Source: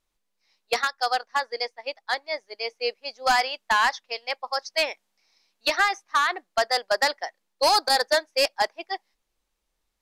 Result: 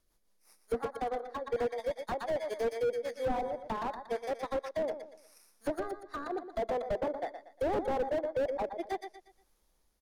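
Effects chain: bit-reversed sample order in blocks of 16 samples; low-pass that closes with the level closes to 450 Hz, closed at -21 dBFS; in parallel at -8.5 dB: saturation -24 dBFS, distortion -15 dB; on the sum: rotary cabinet horn 5.5 Hz, later 0.7 Hz, at 0.98 s; on a send: feedback delay 118 ms, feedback 35%, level -11 dB; on the sum: slew-rate limiter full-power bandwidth 14 Hz; trim +4 dB

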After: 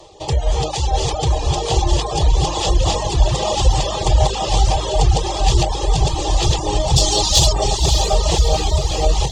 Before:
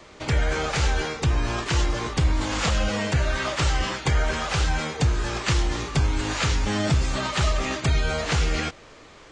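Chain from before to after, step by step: backward echo that repeats 463 ms, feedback 53%, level 0 dB; 6.96–7.53 s: resonant high shelf 3 kHz +10 dB, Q 1.5; in parallel at -8 dB: sine folder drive 6 dB, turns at -2.5 dBFS; on the sum: peaking EQ 2.2 kHz -14 dB 0.23 oct; on a send: echo that smears into a reverb 584 ms, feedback 56%, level -5.5 dB; on the sum: reverb removal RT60 0.65 s; static phaser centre 620 Hz, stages 4; reverb removal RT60 0.56 s; de-hum 52.39 Hz, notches 6; small resonant body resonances 320/820/3400 Hz, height 8 dB, ringing for 35 ms

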